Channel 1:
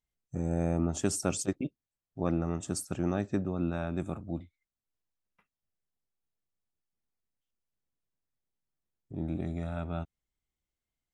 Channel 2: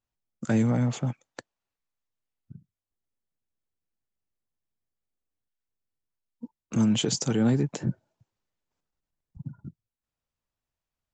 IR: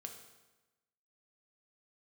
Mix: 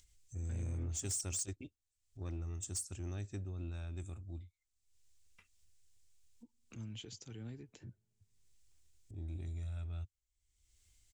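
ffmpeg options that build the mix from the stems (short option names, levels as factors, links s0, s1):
-filter_complex "[0:a]volume=0.944[s0];[1:a]lowpass=3000,volume=0.282,asplit=2[s1][s2];[s2]volume=0.075[s3];[2:a]atrim=start_sample=2205[s4];[s3][s4]afir=irnorm=-1:irlink=0[s5];[s0][s1][s5]amix=inputs=3:normalize=0,firequalizer=gain_entry='entry(100,0);entry(140,-19);entry(350,-13);entry(580,-20);entry(1200,-17);entry(2300,-7);entry(7500,4);entry(12000,-10)':delay=0.05:min_phase=1,acompressor=mode=upward:threshold=0.00355:ratio=2.5,asoftclip=type=tanh:threshold=0.0237"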